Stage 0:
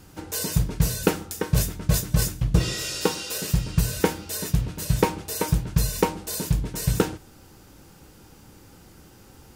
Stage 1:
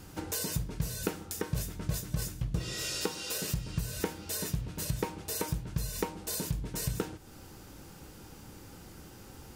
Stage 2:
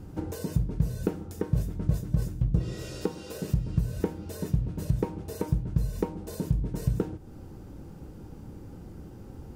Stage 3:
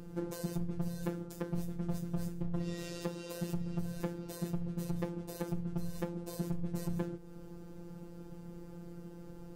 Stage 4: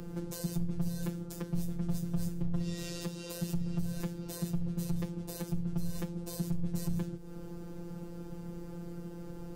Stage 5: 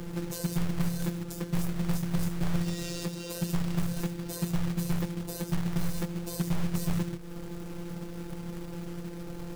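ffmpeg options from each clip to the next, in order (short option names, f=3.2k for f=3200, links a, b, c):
-af "acompressor=threshold=-33dB:ratio=3"
-af "tiltshelf=f=970:g=10,volume=-2dB"
-af "asoftclip=type=hard:threshold=-26dB,afftfilt=real='hypot(re,im)*cos(PI*b)':imag='0':win_size=1024:overlap=0.75,aeval=exprs='val(0)+0.000562*sin(2*PI*480*n/s)':c=same"
-filter_complex "[0:a]acrossover=split=190|3000[a][b][c];[b]acompressor=threshold=-48dB:ratio=6[d];[a][d][c]amix=inputs=3:normalize=0,volume=5.5dB"
-af "acrusher=bits=3:mode=log:mix=0:aa=0.000001,volume=4dB"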